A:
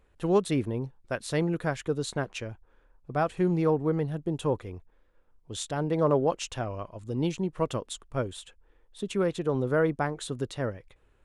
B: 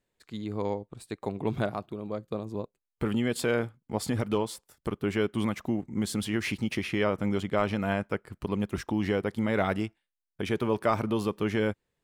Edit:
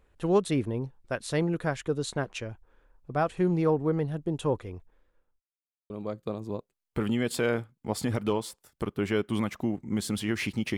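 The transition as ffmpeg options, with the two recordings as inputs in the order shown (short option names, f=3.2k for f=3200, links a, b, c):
-filter_complex "[0:a]apad=whole_dur=10.77,atrim=end=10.77,asplit=2[a][b];[a]atrim=end=5.42,asetpts=PTS-STARTPTS,afade=t=out:st=4.78:d=0.64:c=qsin[c];[b]atrim=start=5.42:end=5.9,asetpts=PTS-STARTPTS,volume=0[d];[1:a]atrim=start=1.95:end=6.82,asetpts=PTS-STARTPTS,afade=t=in:d=0.004:c=hsin[e];[c][d][e]concat=n=3:v=0:a=1"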